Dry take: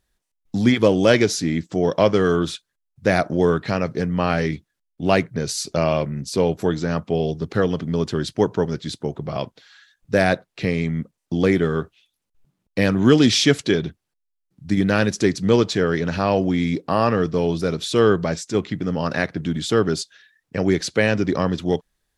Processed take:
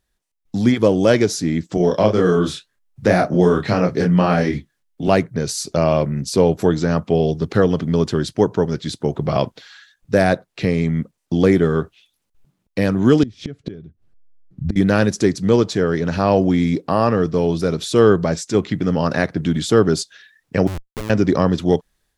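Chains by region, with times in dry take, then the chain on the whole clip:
0:01.77–0:05.08: flanger 1.9 Hz, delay 5.1 ms, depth 5.8 ms, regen −57% + double-tracking delay 28 ms −3 dB + multiband upward and downward compressor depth 40%
0:13.23–0:14.76: spectral tilt −4 dB per octave + notch filter 910 Hz, Q 6 + gate with flip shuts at −11 dBFS, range −26 dB
0:20.67–0:21.10: low-pass filter 1,200 Hz + downward compressor 12 to 1, threshold −24 dBFS + comparator with hysteresis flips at −28.5 dBFS
whole clip: dynamic equaliser 2,700 Hz, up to −6 dB, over −35 dBFS, Q 0.75; automatic gain control; level −1 dB

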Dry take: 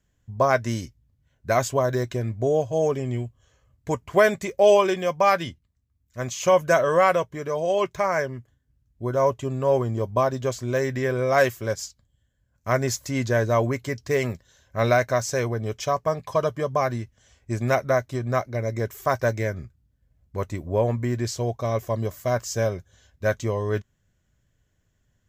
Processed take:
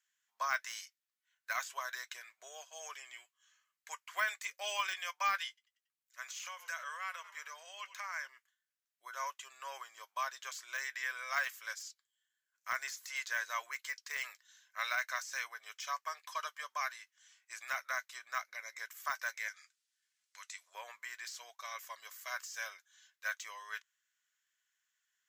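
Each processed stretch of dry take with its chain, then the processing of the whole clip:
0:05.48–0:08.27: echo with shifted repeats 93 ms, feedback 52%, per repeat −49 Hz, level −21 dB + downward compressor, threshold −25 dBFS
0:19.48–0:20.75: meter weighting curve ITU-R 468 + downward compressor 2 to 1, threshold −43 dBFS
whole clip: high-pass filter 1,300 Hz 24 dB per octave; de-essing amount 85%; level −3.5 dB

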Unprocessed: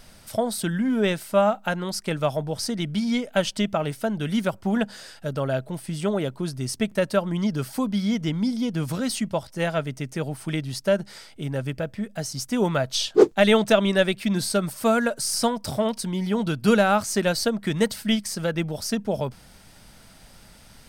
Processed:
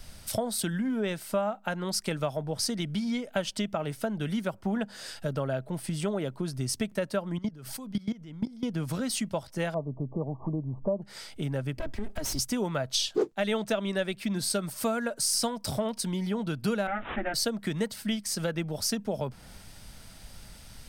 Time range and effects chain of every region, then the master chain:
0:07.38–0:08.63: low-shelf EQ 70 Hz +7.5 dB + output level in coarse steps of 21 dB
0:09.74–0:11.02: linear-phase brick-wall low-pass 1,200 Hz + upward compression, threshold −29 dBFS
0:11.77–0:12.39: lower of the sound and its delayed copy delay 3.1 ms + low-shelf EQ 150 Hz +7.5 dB + downward compressor 3 to 1, threshold −30 dBFS
0:16.87–0:17.34: lower of the sound and its delayed copy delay 8.8 ms + phaser with its sweep stopped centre 700 Hz, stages 8 + bad sample-rate conversion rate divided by 6×, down none, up filtered
whole clip: downward compressor 4 to 1, threshold −35 dBFS; multiband upward and downward expander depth 40%; level +5.5 dB

